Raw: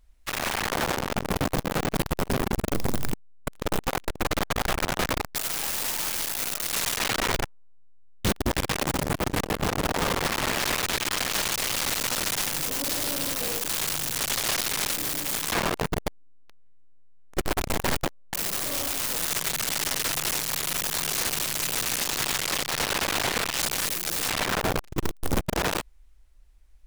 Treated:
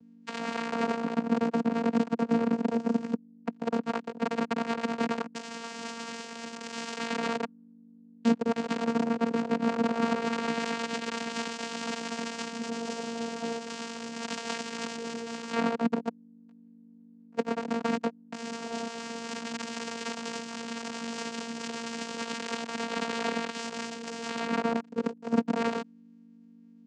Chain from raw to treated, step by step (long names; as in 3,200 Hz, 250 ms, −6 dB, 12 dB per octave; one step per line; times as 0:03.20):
pitch shifter swept by a sawtooth +4 semitones, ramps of 407 ms
mains hum 50 Hz, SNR 21 dB
channel vocoder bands 8, saw 231 Hz